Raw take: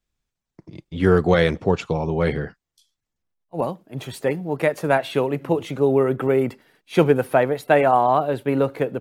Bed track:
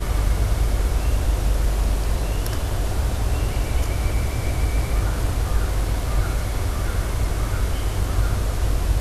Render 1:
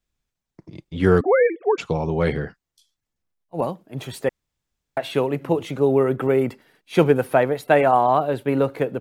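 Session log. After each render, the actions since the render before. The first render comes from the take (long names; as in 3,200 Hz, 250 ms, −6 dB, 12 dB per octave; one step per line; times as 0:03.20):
0:01.21–0:01.78: three sine waves on the formant tracks
0:04.29–0:04.97: fill with room tone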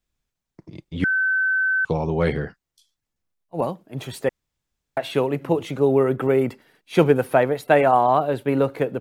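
0:01.04–0:01.85: beep over 1,530 Hz −17.5 dBFS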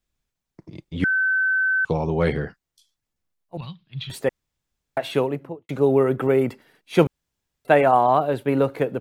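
0:03.57–0:04.10: drawn EQ curve 160 Hz 0 dB, 260 Hz −21 dB, 390 Hz −24 dB, 600 Hz −29 dB, 1,100 Hz −12 dB, 1,600 Hz −9 dB, 3,800 Hz +10 dB, 7,500 Hz −23 dB
0:05.15–0:05.69: fade out and dull
0:07.07–0:07.65: fill with room tone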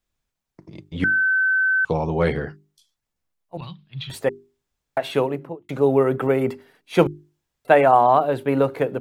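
parametric band 900 Hz +2.5 dB 1.9 octaves
mains-hum notches 50/100/150/200/250/300/350/400 Hz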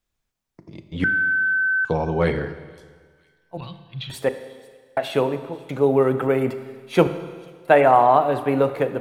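delay with a high-pass on its return 488 ms, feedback 60%, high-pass 3,500 Hz, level −21 dB
four-comb reverb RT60 1.6 s, combs from 27 ms, DRR 10.5 dB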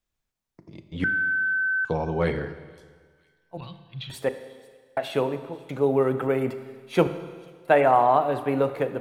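level −4 dB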